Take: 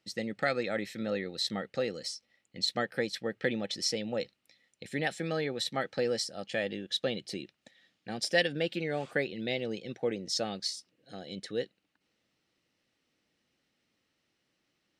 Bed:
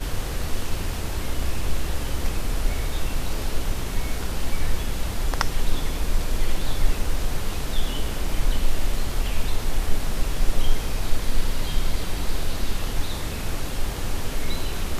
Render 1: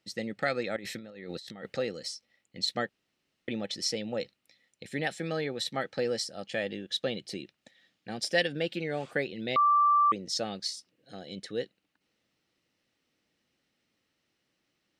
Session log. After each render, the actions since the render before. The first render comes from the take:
0:00.76–0:01.77: compressor whose output falls as the input rises −43 dBFS
0:02.89–0:03.48: fill with room tone
0:09.56–0:10.12: beep over 1,170 Hz −19.5 dBFS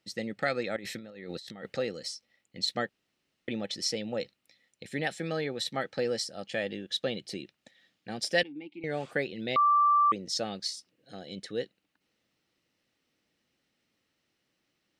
0:08.43–0:08.84: formant filter u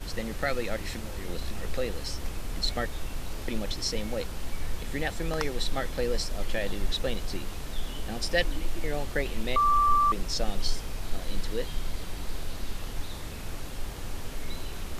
mix in bed −9 dB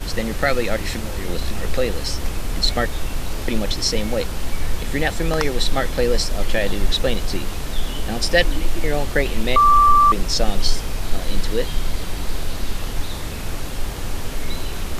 level +10 dB
brickwall limiter −3 dBFS, peak gain reduction 1.5 dB

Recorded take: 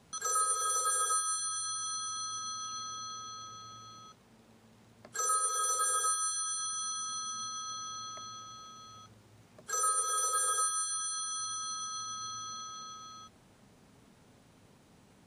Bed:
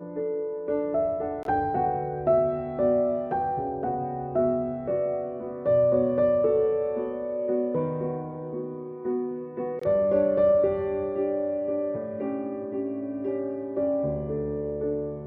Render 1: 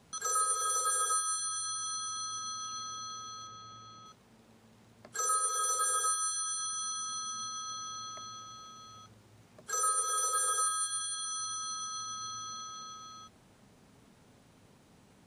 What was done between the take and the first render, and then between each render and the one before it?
0:03.47–0:04.06: high-frequency loss of the air 64 metres
0:10.62–0:11.25: double-tracking delay 45 ms −5.5 dB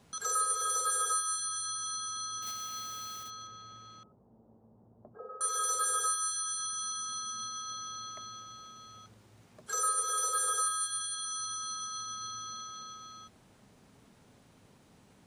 0:02.42–0:03.32: one scale factor per block 3 bits
0:04.03–0:05.41: inverse Chebyshev low-pass filter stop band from 4,900 Hz, stop band 80 dB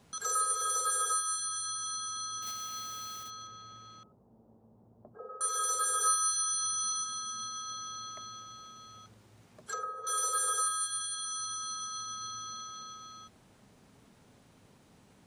0:05.99–0:07.04: double-tracking delay 19 ms −3 dB
0:09.64–0:10.07: treble cut that deepens with the level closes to 940 Hz, closed at −27 dBFS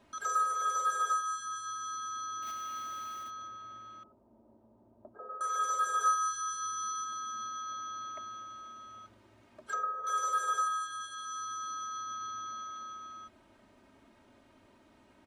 bass and treble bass −5 dB, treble −12 dB
comb filter 3.2 ms, depth 71%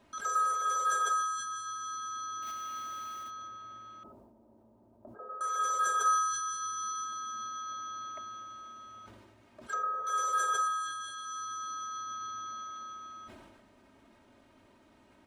level that may fall only so fast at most 36 dB per second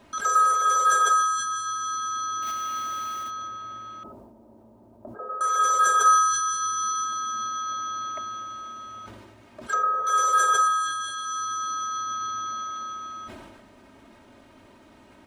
level +9.5 dB

